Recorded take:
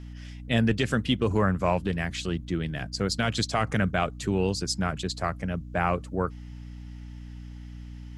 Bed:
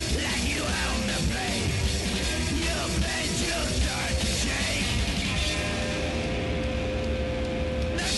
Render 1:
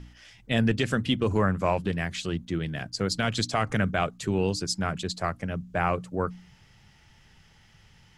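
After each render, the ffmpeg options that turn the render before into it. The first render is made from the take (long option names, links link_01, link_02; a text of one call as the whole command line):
ffmpeg -i in.wav -af "bandreject=frequency=60:width_type=h:width=4,bandreject=frequency=120:width_type=h:width=4,bandreject=frequency=180:width_type=h:width=4,bandreject=frequency=240:width_type=h:width=4,bandreject=frequency=300:width_type=h:width=4" out.wav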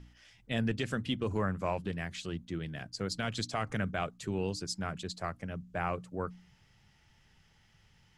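ffmpeg -i in.wav -af "volume=-8dB" out.wav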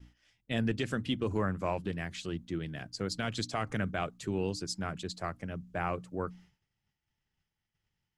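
ffmpeg -i in.wav -af "agate=range=-33dB:threshold=-51dB:ratio=3:detection=peak,equalizer=frequency=320:width=2.6:gain=3.5" out.wav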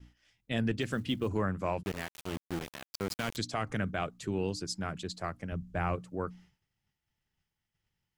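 ffmpeg -i in.wav -filter_complex "[0:a]asplit=3[link_01][link_02][link_03];[link_01]afade=type=out:start_time=0.8:duration=0.02[link_04];[link_02]acrusher=bits=8:mode=log:mix=0:aa=0.000001,afade=type=in:start_time=0.8:duration=0.02,afade=type=out:start_time=1.27:duration=0.02[link_05];[link_03]afade=type=in:start_time=1.27:duration=0.02[link_06];[link_04][link_05][link_06]amix=inputs=3:normalize=0,asettb=1/sr,asplit=3[link_07][link_08][link_09];[link_07]atrim=end=1.834[link_10];[link_08]atrim=start=1.83:end=3.37,asetpts=PTS-STARTPTS,afade=type=in:duration=0.004:curve=qsin,afade=type=out:start_time=1.536:duration=0.004:curve=qsin,aeval=exprs='val(0)*gte(abs(val(0)),0.02)':channel_layout=same[link_11];[link_09]atrim=start=3.366[link_12];[link_10][link_11]acrossfade=duration=0.004:curve1=hsin:curve2=qsin[link_13];[link_13][link_12]acrossfade=duration=0.004:curve1=qsin:curve2=hsin,asettb=1/sr,asplit=3[link_14][link_15][link_16];[link_14]atrim=end=5.524[link_17];[link_15]atrim=start=5.52:end=5.96,asetpts=PTS-STARTPTS,afade=type=in:duration=0.004:curve=qsin,afade=type=out:start_time=0.436:duration=0.004:curve=qsin,lowshelf=frequency=100:gain=12[link_18];[link_16]atrim=start=5.956[link_19];[link_17][link_18]acrossfade=duration=0.004:curve1=hsin:curve2=qsin[link_20];[link_20][link_19]acrossfade=duration=0.004:curve1=qsin:curve2=hsin" out.wav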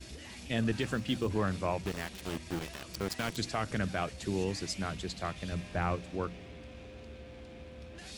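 ffmpeg -i in.wav -i bed.wav -filter_complex "[1:a]volume=-20dB[link_01];[0:a][link_01]amix=inputs=2:normalize=0" out.wav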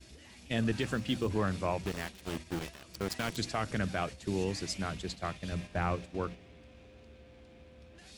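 ffmpeg -i in.wav -af "agate=range=-7dB:threshold=-40dB:ratio=16:detection=peak" out.wav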